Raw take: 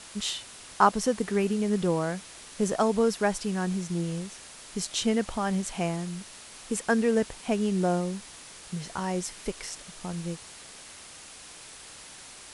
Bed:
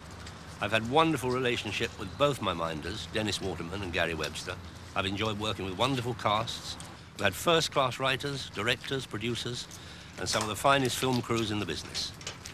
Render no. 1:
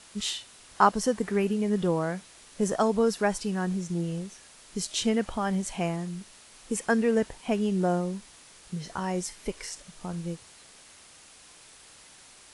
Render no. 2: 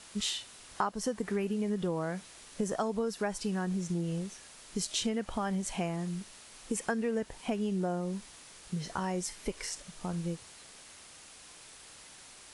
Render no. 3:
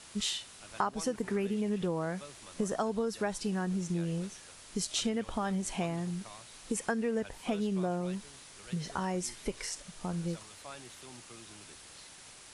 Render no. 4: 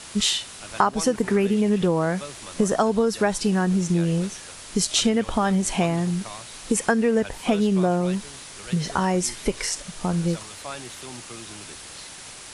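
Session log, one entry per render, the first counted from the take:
noise print and reduce 6 dB
compressor 5:1, threshold -29 dBFS, peak gain reduction 13.5 dB
add bed -23.5 dB
gain +11.5 dB

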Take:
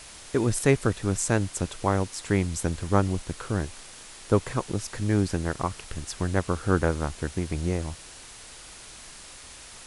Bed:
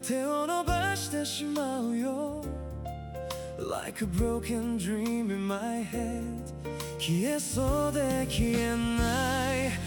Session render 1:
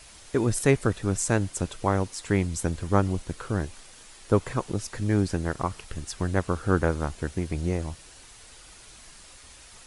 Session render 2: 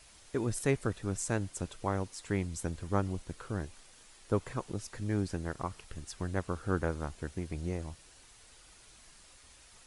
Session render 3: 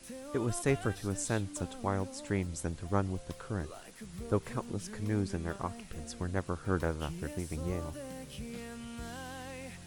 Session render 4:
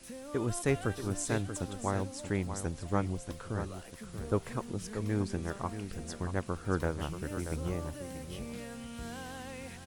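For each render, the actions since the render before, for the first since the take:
denoiser 6 dB, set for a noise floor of -46 dBFS
gain -8.5 dB
add bed -15.5 dB
echo 0.633 s -9.5 dB

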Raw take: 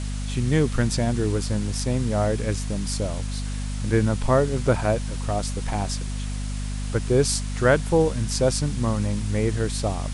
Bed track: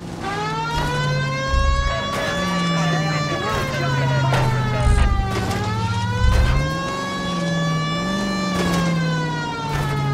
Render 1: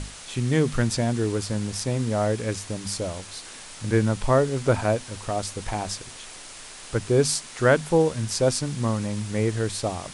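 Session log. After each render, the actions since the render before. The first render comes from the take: notches 50/100/150/200/250 Hz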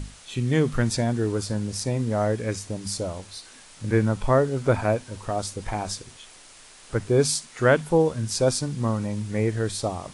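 noise print and reduce 7 dB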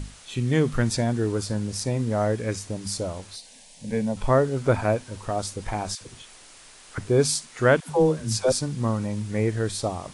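3.36–4.17 fixed phaser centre 350 Hz, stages 6; 5.95–6.98 dispersion lows, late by 60 ms, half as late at 690 Hz; 7.8–8.52 dispersion lows, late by 0.102 s, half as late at 340 Hz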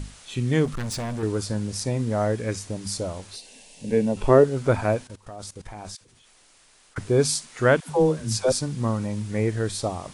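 0.65–1.23 hard clip -27 dBFS; 3.33–4.44 small resonant body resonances 370/2700 Hz, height 12 dB, ringing for 25 ms; 5.07–6.97 level quantiser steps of 19 dB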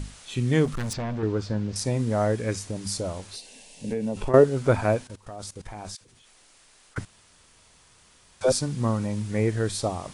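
0.93–1.76 air absorption 160 m; 2.63–4.34 compressor, threshold -24 dBFS; 7.05–8.41 room tone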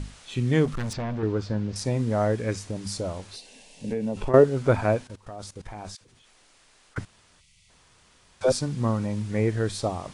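7.4–7.69 spectral gain 210–1900 Hz -19 dB; high shelf 8700 Hz -10.5 dB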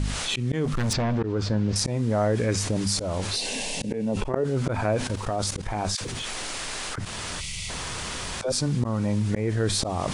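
auto swell 0.336 s; fast leveller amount 70%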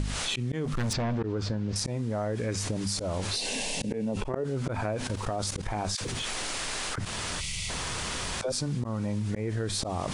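compressor, threshold -27 dBFS, peak gain reduction 8.5 dB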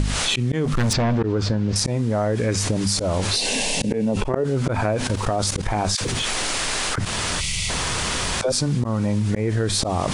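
gain +9 dB

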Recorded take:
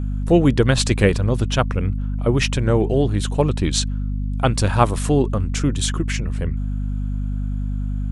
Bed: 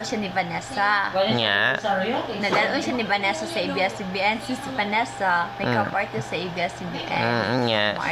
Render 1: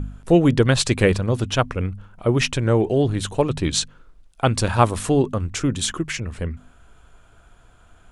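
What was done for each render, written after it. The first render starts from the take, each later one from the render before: de-hum 50 Hz, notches 5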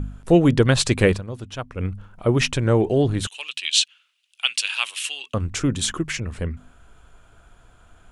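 1.09–1.86 dip -11.5 dB, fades 0.14 s; 3.27–5.34 resonant high-pass 2800 Hz, resonance Q 5.4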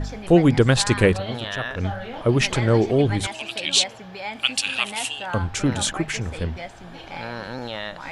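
add bed -10 dB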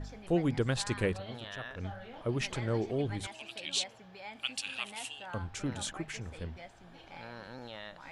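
gain -14 dB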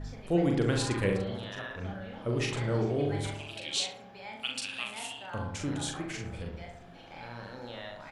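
doubler 41 ms -4 dB; darkening echo 68 ms, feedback 62%, low-pass 1400 Hz, level -4 dB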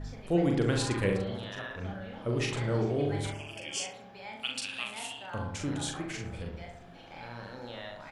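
3.32–3.94 Butterworth band-stop 3900 Hz, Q 2.4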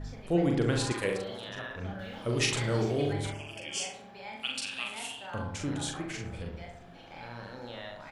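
0.92–1.49 tone controls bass -12 dB, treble +7 dB; 1.99–3.13 high shelf 2600 Hz +11.5 dB; 3.67–5.42 flutter echo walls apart 7.9 m, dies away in 0.32 s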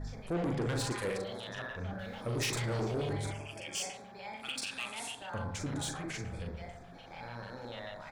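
LFO notch square 6.8 Hz 310–2900 Hz; soft clip -29 dBFS, distortion -10 dB

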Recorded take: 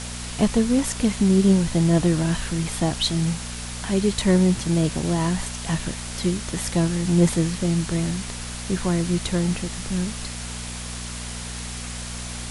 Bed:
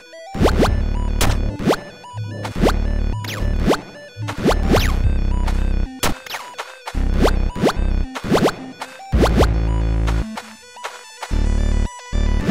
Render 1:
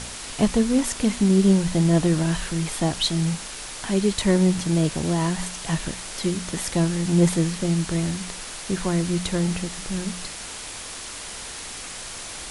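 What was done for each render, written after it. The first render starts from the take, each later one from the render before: de-hum 60 Hz, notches 4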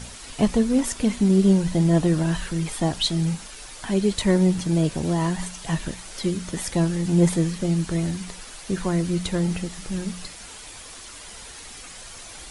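denoiser 8 dB, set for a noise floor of -36 dBFS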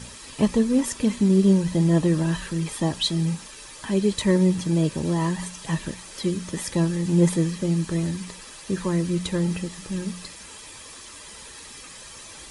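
notch comb 720 Hz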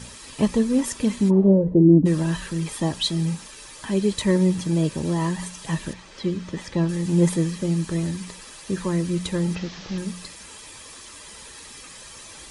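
1.29–2.05 synth low-pass 970 Hz -> 240 Hz, resonance Q 5.2; 5.93–6.89 air absorption 120 m; 9.55–9.98 delta modulation 32 kbps, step -33.5 dBFS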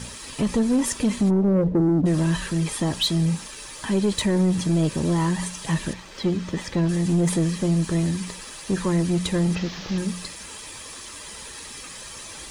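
limiter -14 dBFS, peak gain reduction 9 dB; sample leveller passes 1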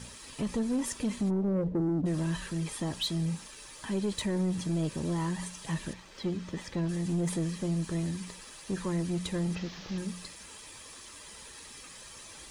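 gain -9.5 dB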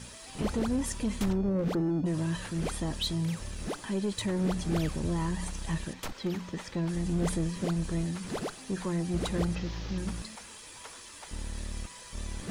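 add bed -20 dB

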